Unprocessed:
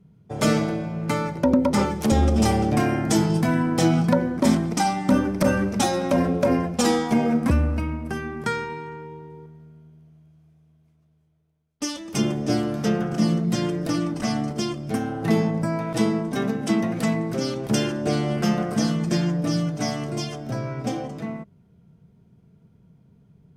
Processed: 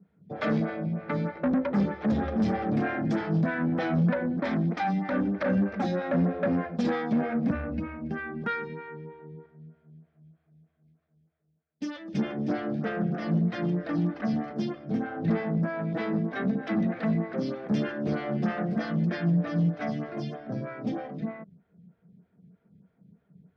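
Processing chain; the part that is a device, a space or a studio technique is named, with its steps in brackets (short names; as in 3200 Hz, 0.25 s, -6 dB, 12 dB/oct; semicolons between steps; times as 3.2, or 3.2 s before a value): vibe pedal into a guitar amplifier (photocell phaser 3.2 Hz; tube stage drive 21 dB, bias 0.25; speaker cabinet 100–3700 Hz, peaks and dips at 120 Hz -5 dB, 180 Hz +7 dB, 380 Hz -4 dB, 960 Hz -7 dB, 1700 Hz +5 dB, 2900 Hz -6 dB)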